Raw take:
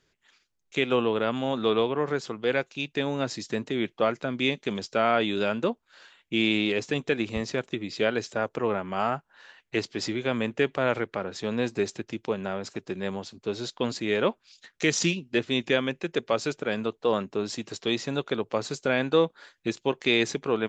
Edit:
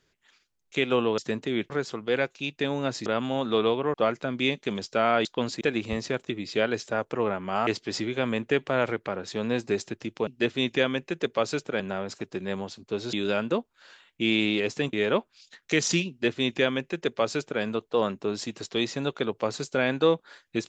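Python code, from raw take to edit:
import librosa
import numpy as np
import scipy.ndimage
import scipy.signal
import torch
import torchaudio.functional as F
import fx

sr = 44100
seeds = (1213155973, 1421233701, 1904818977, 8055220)

y = fx.edit(x, sr, fx.swap(start_s=1.18, length_s=0.88, other_s=3.42, other_length_s=0.52),
    fx.swap(start_s=5.25, length_s=1.8, other_s=13.68, other_length_s=0.36),
    fx.cut(start_s=9.11, length_s=0.64),
    fx.duplicate(start_s=15.2, length_s=1.53, to_s=12.35), tone=tone)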